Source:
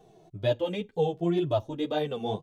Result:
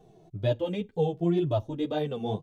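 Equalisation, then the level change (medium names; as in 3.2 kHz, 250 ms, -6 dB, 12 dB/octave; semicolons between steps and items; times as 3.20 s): bass shelf 340 Hz +8 dB; -3.5 dB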